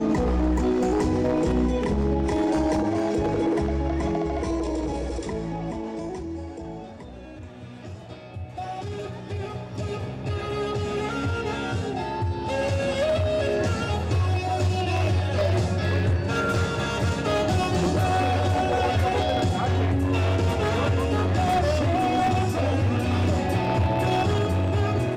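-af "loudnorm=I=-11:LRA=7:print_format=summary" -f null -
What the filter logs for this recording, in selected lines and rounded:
Input Integrated:    -24.6 LUFS
Input True Peak:     -11.5 dBTP
Input LRA:             8.2 LU
Input Threshold:     -34.9 LUFS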